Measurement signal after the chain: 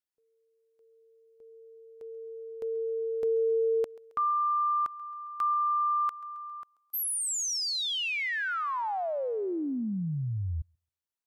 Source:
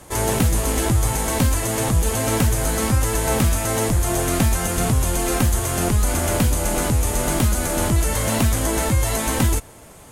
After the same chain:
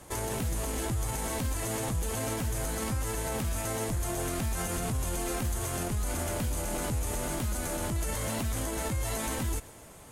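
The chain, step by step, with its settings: limiter -17 dBFS; on a send: thinning echo 0.135 s, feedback 63%, high-pass 460 Hz, level -20 dB; on the sum: gain -6.5 dB

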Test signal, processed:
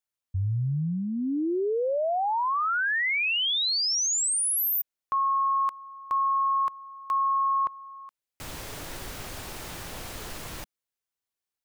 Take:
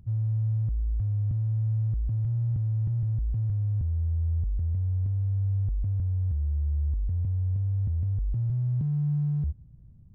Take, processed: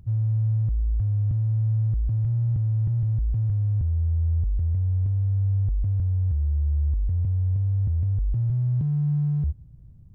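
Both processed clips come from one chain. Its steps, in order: bell 210 Hz -4 dB 0.56 oct; gain +4 dB

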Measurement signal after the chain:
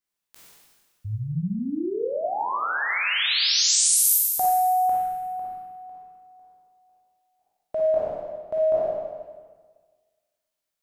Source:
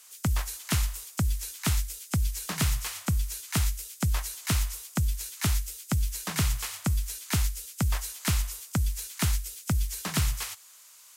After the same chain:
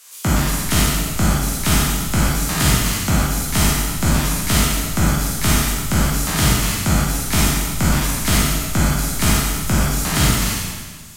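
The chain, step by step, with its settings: spectral trails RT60 1.55 s; Schroeder reverb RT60 0.54 s, DRR 0 dB; gain +5 dB

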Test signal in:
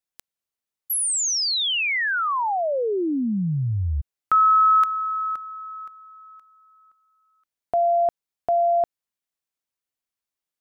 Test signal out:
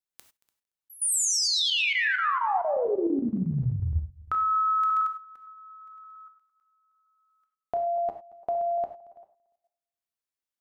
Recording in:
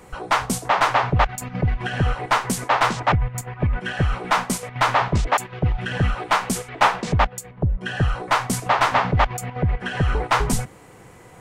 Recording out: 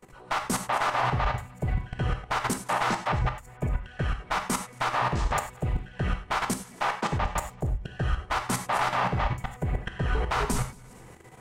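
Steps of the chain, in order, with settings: regenerating reverse delay 0.114 s, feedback 42%, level -7.5 dB; level quantiser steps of 23 dB; non-linear reverb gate 0.12 s flat, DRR 6 dB; gain -3 dB

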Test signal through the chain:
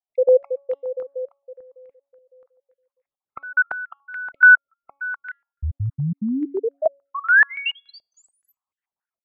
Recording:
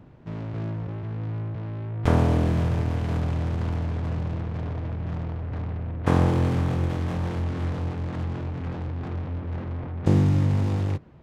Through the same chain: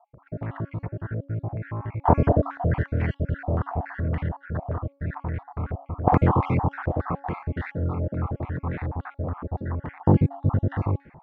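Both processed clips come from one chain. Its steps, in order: random spectral dropouts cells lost 52%; de-hum 279.3 Hz, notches 28; stepped low-pass 7 Hz 630–2100 Hz; gain +2.5 dB

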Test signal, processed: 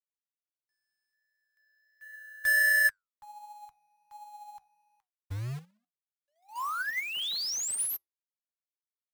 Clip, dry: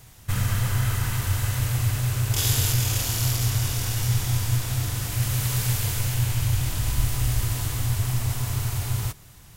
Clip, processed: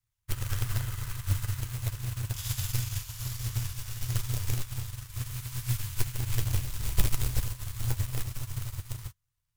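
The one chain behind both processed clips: elliptic band-stop 140–1000 Hz, stop band 50 dB; low shelf 71 Hz +7.5 dB; in parallel at -3 dB: limiter -15.5 dBFS; on the sum: companded quantiser 4-bit; flange 1.4 Hz, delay 8.5 ms, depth 6.1 ms, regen +74%; upward expander 2.5:1, over -38 dBFS

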